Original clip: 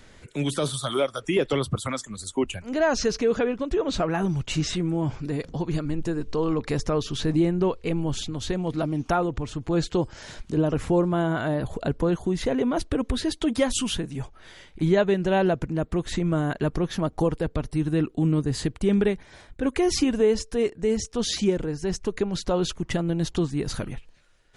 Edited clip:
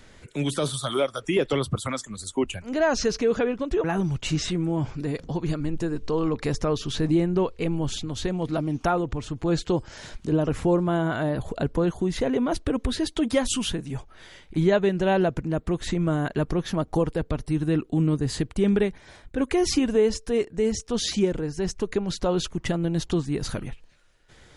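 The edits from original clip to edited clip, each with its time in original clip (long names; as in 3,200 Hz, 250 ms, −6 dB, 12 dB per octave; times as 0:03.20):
0:03.84–0:04.09: remove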